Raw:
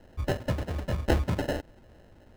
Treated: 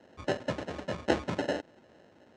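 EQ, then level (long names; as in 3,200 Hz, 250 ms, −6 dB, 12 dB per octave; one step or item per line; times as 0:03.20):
high-pass filter 210 Hz 12 dB per octave
low-pass filter 7,400 Hz 24 dB per octave
notch filter 4,900 Hz, Q 28
0.0 dB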